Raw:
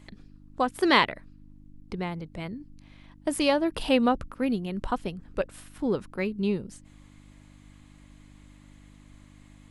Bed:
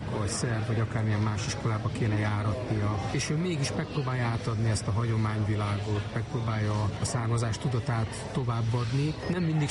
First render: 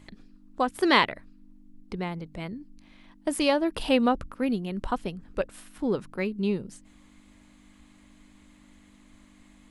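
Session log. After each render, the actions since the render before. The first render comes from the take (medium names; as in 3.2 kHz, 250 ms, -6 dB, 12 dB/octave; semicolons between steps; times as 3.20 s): de-hum 50 Hz, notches 3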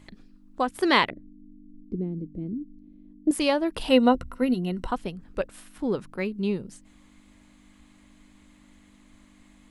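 1.10–3.31 s: FFT filter 130 Hz 0 dB, 310 Hz +9 dB, 950 Hz -28 dB; 3.89–4.87 s: rippled EQ curve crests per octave 2, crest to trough 11 dB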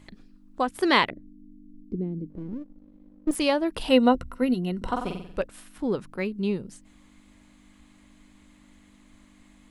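2.30–3.35 s: partial rectifier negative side -7 dB; 4.77–5.43 s: flutter echo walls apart 7.9 m, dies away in 0.6 s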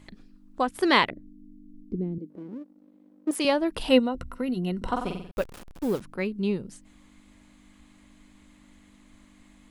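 2.18–3.45 s: high-pass 260 Hz; 3.99–4.57 s: compression, threshold -24 dBFS; 5.31–6.01 s: send-on-delta sampling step -38.5 dBFS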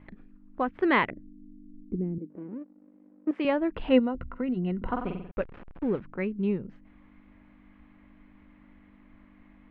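low-pass 2.3 kHz 24 dB/octave; dynamic bell 820 Hz, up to -4 dB, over -40 dBFS, Q 0.86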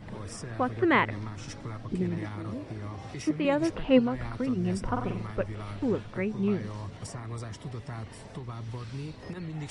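add bed -10 dB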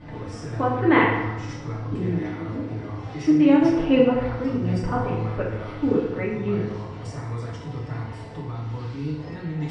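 distance through air 110 m; FDN reverb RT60 1.1 s, low-frequency decay 0.8×, high-frequency decay 0.7×, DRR -5 dB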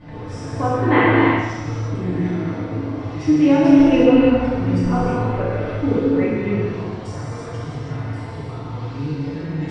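gated-style reverb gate 380 ms flat, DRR -3 dB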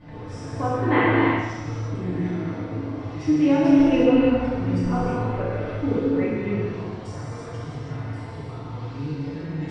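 trim -4.5 dB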